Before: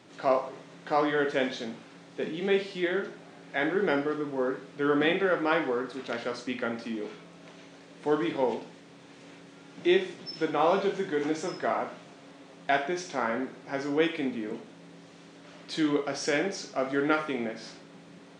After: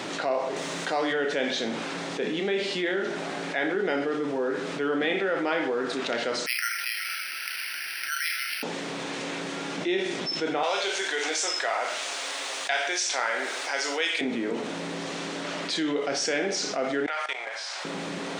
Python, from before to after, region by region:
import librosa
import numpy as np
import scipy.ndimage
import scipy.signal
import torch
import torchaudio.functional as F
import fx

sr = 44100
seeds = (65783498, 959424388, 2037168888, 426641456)

y = fx.chain(x, sr, fx.highpass(hz=58.0, slope=12),
    fx.high_shelf(hz=5500.0, db=11.5), at=(0.56, 1.13))
y = fx.chain(y, sr, fx.brickwall_highpass(low_hz=1300.0),
    fx.high_shelf_res(hz=3400.0, db=-7.0, q=3.0),
    fx.resample_bad(factor=6, down='none', up='hold'), at=(6.46, 8.63))
y = fx.chain(y, sr, fx.highpass(hz=470.0, slope=12),
    fx.tilt_eq(slope=3.5), at=(10.63, 14.21))
y = fx.chain(y, sr, fx.highpass(hz=700.0, slope=24),
    fx.level_steps(step_db=20), at=(17.06, 17.85))
y = fx.highpass(y, sr, hz=360.0, slope=6)
y = fx.dynamic_eq(y, sr, hz=1100.0, q=2.7, threshold_db=-48.0, ratio=4.0, max_db=-6)
y = fx.env_flatten(y, sr, amount_pct=70)
y = F.gain(torch.from_numpy(y), -2.0).numpy()